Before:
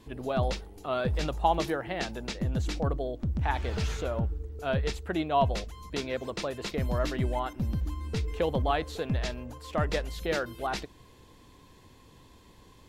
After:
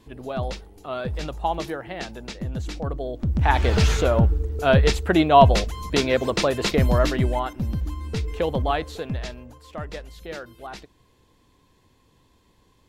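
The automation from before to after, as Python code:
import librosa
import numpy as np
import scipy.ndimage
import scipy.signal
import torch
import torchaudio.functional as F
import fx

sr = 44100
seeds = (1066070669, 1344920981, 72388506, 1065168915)

y = fx.gain(x, sr, db=fx.line((2.85, 0.0), (3.64, 12.0), (6.72, 12.0), (7.59, 4.0), (8.74, 4.0), (9.84, -5.5)))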